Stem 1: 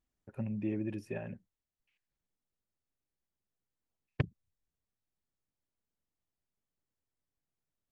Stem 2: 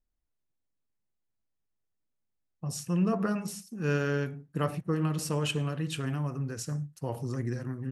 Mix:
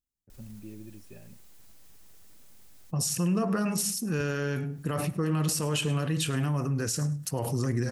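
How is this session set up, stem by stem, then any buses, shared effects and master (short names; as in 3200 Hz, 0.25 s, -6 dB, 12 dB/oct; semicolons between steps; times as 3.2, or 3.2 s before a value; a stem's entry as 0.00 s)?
-6.5 dB, 0.00 s, no send, no echo send, bell 1100 Hz -10.5 dB 2.9 oct
0.0 dB, 0.30 s, no send, echo send -21 dB, fast leveller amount 50%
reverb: off
echo: feedback echo 0.104 s, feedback 18%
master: high shelf 4100 Hz +7.5 dB; limiter -19 dBFS, peak gain reduction 8 dB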